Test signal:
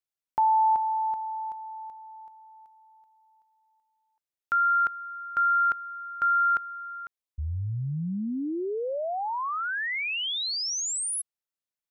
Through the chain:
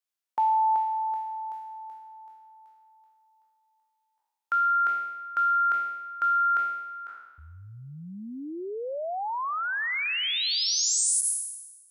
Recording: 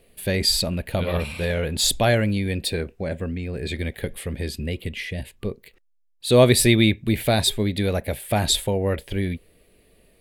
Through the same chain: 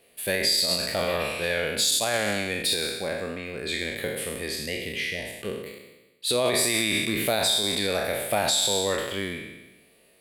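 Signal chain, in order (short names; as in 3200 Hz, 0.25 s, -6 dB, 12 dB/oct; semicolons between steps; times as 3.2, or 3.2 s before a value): spectral trails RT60 1.10 s; HPF 550 Hz 6 dB/oct; limiter -13.5 dBFS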